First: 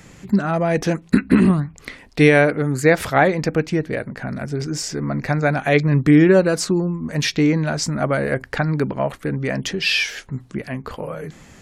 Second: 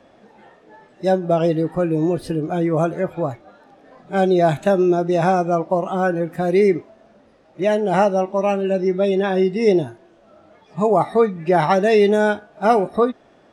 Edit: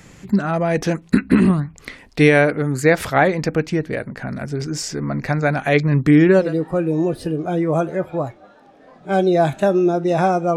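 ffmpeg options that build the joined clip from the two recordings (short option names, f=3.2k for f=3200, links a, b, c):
-filter_complex "[0:a]apad=whole_dur=10.56,atrim=end=10.56,atrim=end=6.55,asetpts=PTS-STARTPTS[a];[1:a]atrim=start=1.41:end=5.6,asetpts=PTS-STARTPTS[b];[a][b]acrossfade=d=0.18:c1=tri:c2=tri"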